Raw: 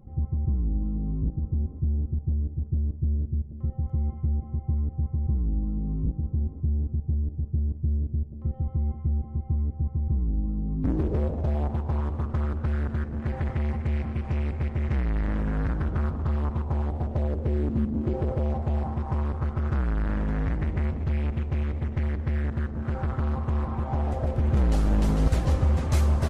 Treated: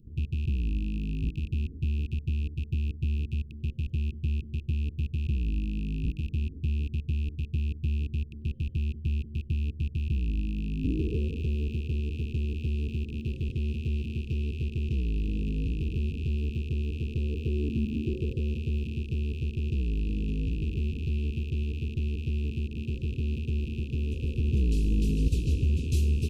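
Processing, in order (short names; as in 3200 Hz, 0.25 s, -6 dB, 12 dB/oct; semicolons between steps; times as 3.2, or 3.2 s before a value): rattling part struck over -32 dBFS, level -29 dBFS; Chebyshev band-stop 450–2600 Hz, order 5; gain -2.5 dB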